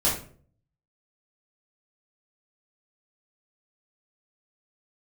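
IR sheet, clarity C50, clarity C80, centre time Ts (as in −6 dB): 5.0 dB, 10.5 dB, 36 ms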